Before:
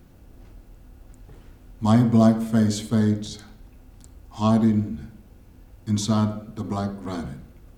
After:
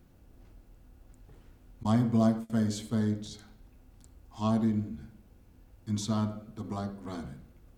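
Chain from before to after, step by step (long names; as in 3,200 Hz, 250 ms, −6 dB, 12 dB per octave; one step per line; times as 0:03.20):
0:01.83–0:02.50: noise gate −23 dBFS, range −24 dB
level −8.5 dB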